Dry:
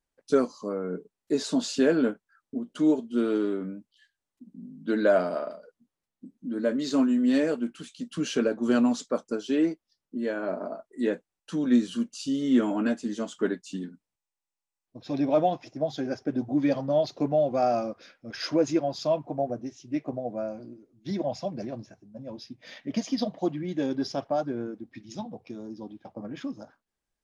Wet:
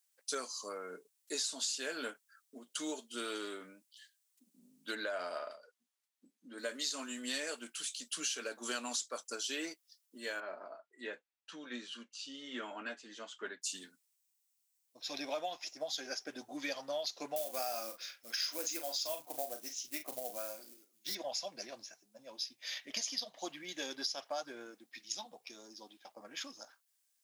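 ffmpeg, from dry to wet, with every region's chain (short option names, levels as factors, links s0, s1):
-filter_complex "[0:a]asettb=1/sr,asplit=3[s0][s1][s2];[s0]atrim=end=4.954[s3];[s1]atrim=start=4.95:end=6.58,asetpts=PTS-STARTPTS,afade=t=in:d=0.004:c=qsin,afade=t=out:st=1.626:d=0.004:c=qsin,lowpass=f=2700:p=1,acompressor=threshold=0.0708:ratio=2.5:attack=3.2:release=140:knee=1:detection=peak[s4];[s2]atrim=start=6.576[s5];[s3][s4]acrossfade=d=0.004:c1=hsin:c2=qsin[s6];[s6][s5]acrossfade=d=0.004:c1=qsin:c2=hsin,asettb=1/sr,asplit=3[s7][s8][s9];[s7]atrim=end=10.404[s10];[s8]atrim=start=10.4:end=13.62,asetpts=PTS-STARTPTS,afade=t=in:d=0.004:c=qsin,afade=t=out:st=3.216:d=0.004:c=qsin,lowpass=2700,flanger=delay=4.9:depth=1.3:regen=-63:speed=1.3:shape=sinusoidal[s11];[s9]atrim=start=13.616[s12];[s10][s11]acrossfade=d=0.004:c1=hsin:c2=qsin[s13];[s13][s12]acrossfade=d=0.004:c1=qsin:c2=hsin,asettb=1/sr,asplit=3[s14][s15][s16];[s14]atrim=end=17.364[s17];[s15]atrim=start=17.36:end=21.15,asetpts=PTS-STARTPTS,afade=t=in:d=0.004:c=qsin,afade=t=out:st=3.786:d=0.004:c=qsin,acrusher=bits=7:mode=log:mix=0:aa=0.000001,asplit=2[s18][s19];[s19]adelay=39,volume=0.355[s20];[s18][s20]amix=inputs=2:normalize=0,atrim=end_sample=167139[s21];[s16]atrim=start=21.146[s22];[s17][s21]acrossfade=d=0.004:c1=hsin:c2=qsin[s23];[s23][s22]acrossfade=d=0.004:c1=qsin:c2=hsin,highpass=f=380:p=1,aderivative,acompressor=threshold=0.00447:ratio=6,volume=4.22"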